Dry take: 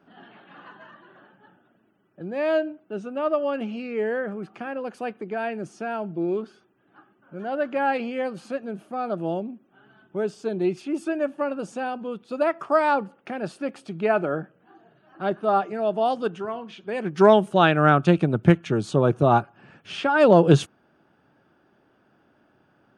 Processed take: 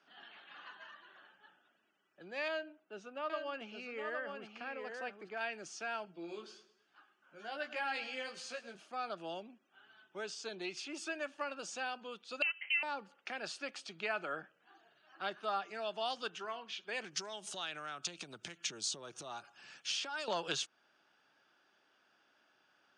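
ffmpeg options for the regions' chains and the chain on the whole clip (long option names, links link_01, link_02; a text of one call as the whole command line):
ffmpeg -i in.wav -filter_complex "[0:a]asettb=1/sr,asplit=3[link_01][link_02][link_03];[link_01]atrim=end=2.484[link_04];[link_02]atrim=start=2.48:end=5.41,asetpts=PTS-STARTPTS,afade=type=in:duration=0.004:curve=qsin,afade=type=out:start_time=2.926:duration=0.004:curve=qsin,highshelf=frequency=2200:gain=-9.5,aecho=1:1:815:0.501,atrim=end_sample=129213[link_05];[link_03]atrim=start=5.406[link_06];[link_04][link_05]acrossfade=duration=0.004:curve1=hsin:curve2=qsin[link_07];[link_07][link_06]acrossfade=duration=0.004:curve1=qsin:curve2=hsin,asettb=1/sr,asplit=3[link_08][link_09][link_10];[link_08]atrim=end=6.054[link_11];[link_09]atrim=start=6.05:end=8.75,asetpts=PTS-STARTPTS,afade=type=in:duration=0.004:curve=qsin,afade=type=out:start_time=2.696:duration=0.004:curve=qsin,flanger=delay=16.5:depth=2.6:speed=1.2,highshelf=frequency=4700:gain=7,aecho=1:1:106|212|318|424:0.158|0.0729|0.0335|0.0154,atrim=end_sample=119070[link_12];[link_10]atrim=start=8.746[link_13];[link_11][link_12]acrossfade=duration=0.004:curve1=hsin:curve2=qsin[link_14];[link_14][link_13]acrossfade=duration=0.004:curve1=qsin:curve2=hsin,asettb=1/sr,asplit=3[link_15][link_16][link_17];[link_15]atrim=end=12.424[link_18];[link_16]atrim=start=12.42:end=12.83,asetpts=PTS-STARTPTS,afade=type=in:duration=0.004:curve=qsin,afade=type=out:start_time=0.406:duration=0.004:curve=qsin,aecho=1:1:4.8:0.34,atrim=end_sample=18081,lowpass=frequency=2800:width_type=q:width=0.5098,lowpass=frequency=2800:width_type=q:width=0.6013,lowpass=frequency=2800:width_type=q:width=0.9,lowpass=frequency=2800:width_type=q:width=2.563,afreqshift=-3300[link_19];[link_17]atrim=start=12.826[link_20];[link_18][link_19]acrossfade=duration=0.004:curve1=hsin:curve2=qsin[link_21];[link_21][link_20]acrossfade=duration=0.004:curve1=qsin:curve2=hsin,asettb=1/sr,asplit=3[link_22][link_23][link_24];[link_22]atrim=end=17.044[link_25];[link_23]atrim=start=17.04:end=20.28,asetpts=PTS-STARTPTS,afade=type=in:duration=0.004:curve=qsin,afade=type=out:start_time=3.236:duration=0.004:curve=qsin,bass=frequency=250:gain=2,treble=frequency=4000:gain=13,acompressor=threshold=-28dB:ratio=16:attack=3.2:release=140:knee=1:detection=peak[link_26];[link_24]atrim=start=20.276[link_27];[link_25][link_26]acrossfade=duration=0.004:curve1=hsin:curve2=qsin[link_28];[link_28][link_27]acrossfade=duration=0.004:curve1=qsin:curve2=hsin,lowpass=frequency=6300:width=0.5412,lowpass=frequency=6300:width=1.3066,aderivative,acrossover=split=290|810[link_29][link_30][link_31];[link_29]acompressor=threshold=-59dB:ratio=4[link_32];[link_30]acompressor=threshold=-53dB:ratio=4[link_33];[link_31]acompressor=threshold=-44dB:ratio=4[link_34];[link_32][link_33][link_34]amix=inputs=3:normalize=0,volume=8.5dB" out.wav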